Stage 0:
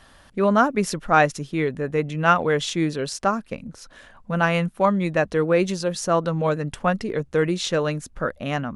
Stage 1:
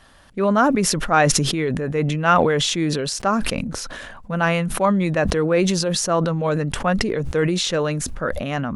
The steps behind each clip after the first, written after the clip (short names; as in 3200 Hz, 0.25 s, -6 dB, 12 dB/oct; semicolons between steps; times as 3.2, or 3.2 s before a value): sustainer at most 25 dB/s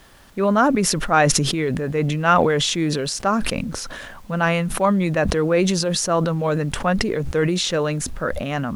added noise pink -53 dBFS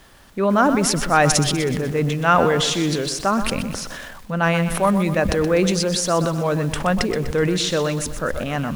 lo-fi delay 0.124 s, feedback 55%, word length 6-bit, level -10 dB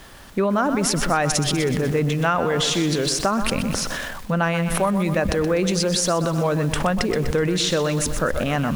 compressor, threshold -23 dBFS, peak gain reduction 12 dB; gain +5.5 dB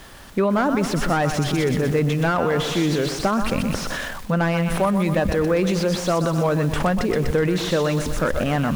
slew limiter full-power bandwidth 140 Hz; gain +1 dB